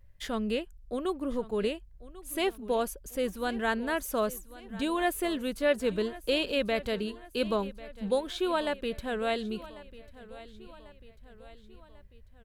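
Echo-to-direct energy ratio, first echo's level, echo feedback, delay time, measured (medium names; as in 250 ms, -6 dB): -16.5 dB, -18.0 dB, 52%, 1094 ms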